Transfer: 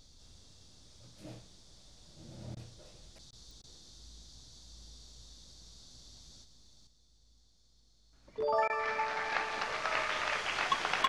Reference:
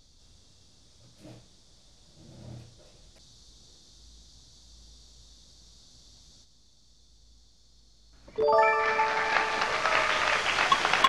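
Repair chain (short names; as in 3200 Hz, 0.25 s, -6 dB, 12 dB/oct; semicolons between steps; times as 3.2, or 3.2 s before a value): de-click; interpolate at 2.55/3.31/3.62/8.68, 16 ms; gain 0 dB, from 6.87 s +8 dB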